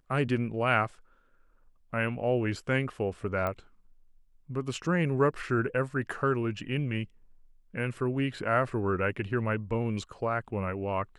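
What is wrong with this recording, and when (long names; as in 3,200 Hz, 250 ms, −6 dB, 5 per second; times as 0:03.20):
0:03.47: click −19 dBFS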